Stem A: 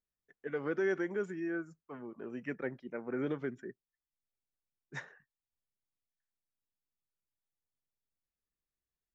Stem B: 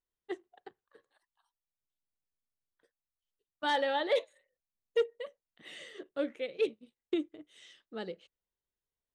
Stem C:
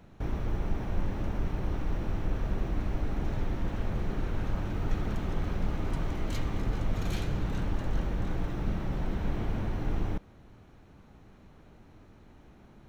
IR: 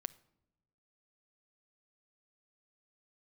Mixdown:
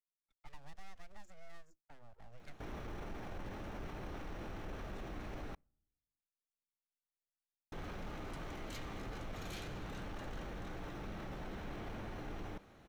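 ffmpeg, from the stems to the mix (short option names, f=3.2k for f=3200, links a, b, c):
-filter_complex "[0:a]agate=range=-13dB:threshold=-59dB:ratio=16:detection=peak,aeval=exprs='abs(val(0))':c=same,acrossover=split=89|3700[a][b][c];[a]acompressor=threshold=-39dB:ratio=4[d];[b]acompressor=threshold=-54dB:ratio=4[e];[c]acompressor=threshold=-58dB:ratio=4[f];[d][e][f]amix=inputs=3:normalize=0,volume=-5.5dB[g];[2:a]lowshelf=f=270:g=-11.5,bandreject=f=960:w=20,volume=32dB,asoftclip=hard,volume=-32dB,adelay=2400,volume=-0.5dB,asplit=3[h][i][j];[h]atrim=end=5.55,asetpts=PTS-STARTPTS,afade=t=out:st=5.546:d=0.004:c=hsin[k];[i]atrim=start=5.55:end=7.72,asetpts=PTS-STARTPTS,volume=0[l];[j]atrim=start=7.72,asetpts=PTS-STARTPTS,afade=t=in:d=0.004:c=hsin[m];[k][l][m]concat=n=3:v=0:a=1,asplit=2[n][o];[o]volume=-19.5dB[p];[3:a]atrim=start_sample=2205[q];[p][q]afir=irnorm=-1:irlink=0[r];[g][n][r]amix=inputs=3:normalize=0,alimiter=level_in=14dB:limit=-24dB:level=0:latency=1:release=23,volume=-14dB"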